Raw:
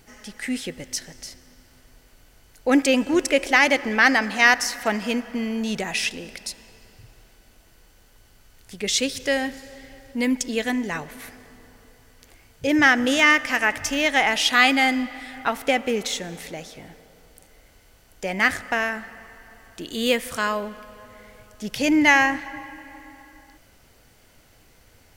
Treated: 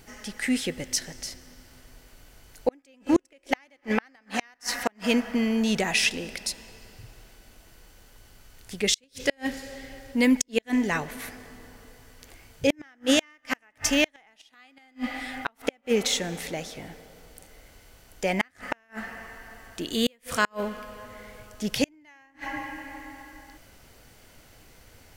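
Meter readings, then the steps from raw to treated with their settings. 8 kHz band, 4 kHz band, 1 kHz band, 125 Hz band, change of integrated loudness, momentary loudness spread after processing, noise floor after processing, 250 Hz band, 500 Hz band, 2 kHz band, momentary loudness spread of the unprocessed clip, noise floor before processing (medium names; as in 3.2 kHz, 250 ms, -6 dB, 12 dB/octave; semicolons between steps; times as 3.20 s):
-1.5 dB, -4.5 dB, -10.0 dB, +0.5 dB, -7.0 dB, 19 LU, -62 dBFS, -3.0 dB, -4.0 dB, -11.0 dB, 18 LU, -56 dBFS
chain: inverted gate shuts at -12 dBFS, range -40 dB; trim +2 dB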